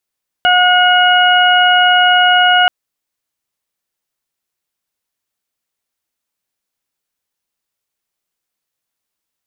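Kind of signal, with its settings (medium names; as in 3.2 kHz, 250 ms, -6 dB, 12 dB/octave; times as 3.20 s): steady additive tone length 2.23 s, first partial 724 Hz, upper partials 0/-12.5/-2 dB, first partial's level -11 dB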